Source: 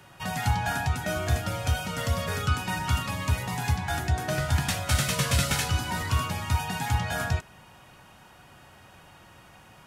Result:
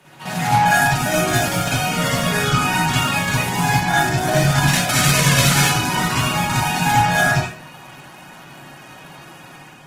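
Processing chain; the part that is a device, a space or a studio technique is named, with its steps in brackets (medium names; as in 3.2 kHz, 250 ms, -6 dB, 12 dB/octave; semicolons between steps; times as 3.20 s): 0.64–1.67 s: treble shelf 6.7 kHz +5 dB; far-field microphone of a smart speaker (reverberation RT60 0.40 s, pre-delay 45 ms, DRR -6 dB; high-pass 150 Hz 24 dB/octave; level rider gain up to 4 dB; trim +2 dB; Opus 16 kbps 48 kHz)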